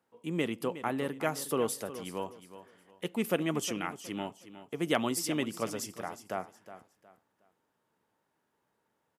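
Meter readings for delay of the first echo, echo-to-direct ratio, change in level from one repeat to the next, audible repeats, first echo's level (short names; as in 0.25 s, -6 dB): 0.364 s, -13.0 dB, -10.5 dB, 3, -13.5 dB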